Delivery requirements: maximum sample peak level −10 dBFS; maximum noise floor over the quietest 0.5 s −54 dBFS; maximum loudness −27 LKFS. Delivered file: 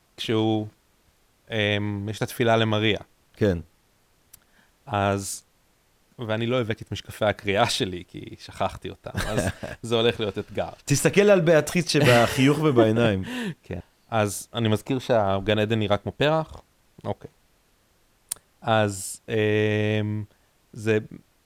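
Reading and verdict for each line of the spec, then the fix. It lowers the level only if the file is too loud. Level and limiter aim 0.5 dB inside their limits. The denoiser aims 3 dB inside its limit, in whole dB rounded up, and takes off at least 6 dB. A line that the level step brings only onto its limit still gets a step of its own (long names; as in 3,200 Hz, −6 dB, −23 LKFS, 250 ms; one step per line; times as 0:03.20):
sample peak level −4.0 dBFS: out of spec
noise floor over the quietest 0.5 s −64 dBFS: in spec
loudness −24.0 LKFS: out of spec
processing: level −3.5 dB
brickwall limiter −10.5 dBFS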